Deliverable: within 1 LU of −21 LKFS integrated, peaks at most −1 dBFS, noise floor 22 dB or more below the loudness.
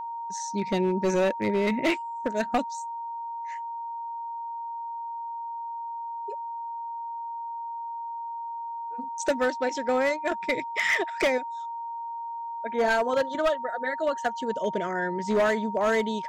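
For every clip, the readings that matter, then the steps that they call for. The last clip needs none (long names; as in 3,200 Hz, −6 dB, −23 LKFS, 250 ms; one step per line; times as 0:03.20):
share of clipped samples 1.0%; peaks flattened at −18.5 dBFS; interfering tone 930 Hz; level of the tone −32 dBFS; integrated loudness −29.0 LKFS; sample peak −18.5 dBFS; target loudness −21.0 LKFS
→ clipped peaks rebuilt −18.5 dBFS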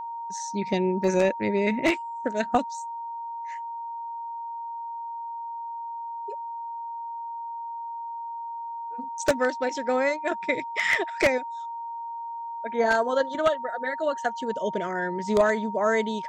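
share of clipped samples 0.0%; interfering tone 930 Hz; level of the tone −32 dBFS
→ notch filter 930 Hz, Q 30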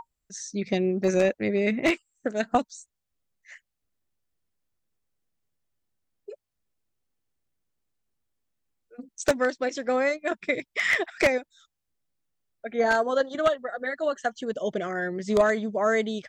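interfering tone none found; integrated loudness −26.0 LKFS; sample peak −9.0 dBFS; target loudness −21.0 LKFS
→ level +5 dB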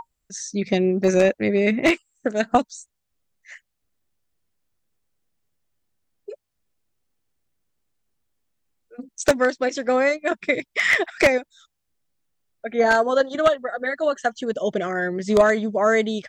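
integrated loudness −21.0 LKFS; sample peak −4.0 dBFS; background noise floor −77 dBFS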